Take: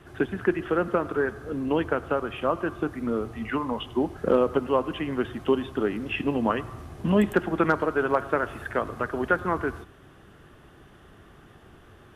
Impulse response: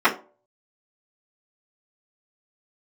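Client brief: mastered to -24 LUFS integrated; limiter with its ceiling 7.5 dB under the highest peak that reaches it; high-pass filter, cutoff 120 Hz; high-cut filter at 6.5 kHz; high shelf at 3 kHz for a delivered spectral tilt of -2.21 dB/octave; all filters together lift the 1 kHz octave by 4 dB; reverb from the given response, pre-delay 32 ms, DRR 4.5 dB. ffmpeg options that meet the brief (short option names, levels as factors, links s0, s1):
-filter_complex "[0:a]highpass=120,lowpass=6500,equalizer=f=1000:t=o:g=6,highshelf=f=3000:g=-6,alimiter=limit=0.224:level=0:latency=1,asplit=2[s0][s1];[1:a]atrim=start_sample=2205,adelay=32[s2];[s1][s2]afir=irnorm=-1:irlink=0,volume=0.0531[s3];[s0][s3]amix=inputs=2:normalize=0,volume=1.26"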